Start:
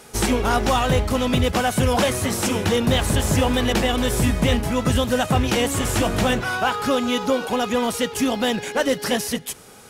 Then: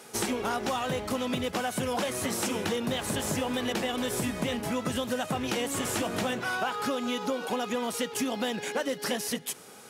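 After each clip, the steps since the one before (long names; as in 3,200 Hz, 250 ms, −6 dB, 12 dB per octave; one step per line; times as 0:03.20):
high-pass filter 170 Hz 12 dB per octave
downward compressor, threshold −23 dBFS, peak gain reduction 8 dB
level −3.5 dB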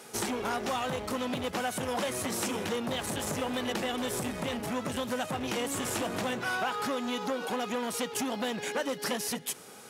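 saturating transformer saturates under 1,200 Hz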